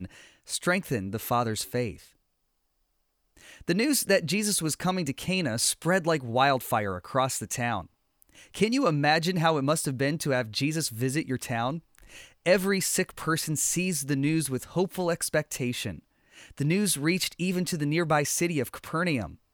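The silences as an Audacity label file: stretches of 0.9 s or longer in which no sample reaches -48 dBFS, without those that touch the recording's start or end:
2.100000	3.370000	silence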